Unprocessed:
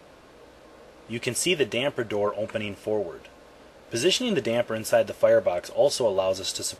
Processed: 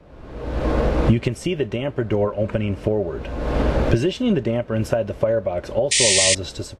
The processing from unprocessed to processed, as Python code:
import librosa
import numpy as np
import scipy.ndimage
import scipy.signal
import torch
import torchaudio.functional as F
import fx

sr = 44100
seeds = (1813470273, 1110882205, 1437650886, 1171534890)

y = fx.fade_out_tail(x, sr, length_s=1.18)
y = fx.recorder_agc(y, sr, target_db=-11.5, rise_db_per_s=43.0, max_gain_db=30)
y = fx.riaa(y, sr, side='playback')
y = fx.spec_paint(y, sr, seeds[0], shape='noise', start_s=5.91, length_s=0.44, low_hz=1800.0, high_hz=9400.0, level_db=-13.0)
y = y * librosa.db_to_amplitude(-4.0)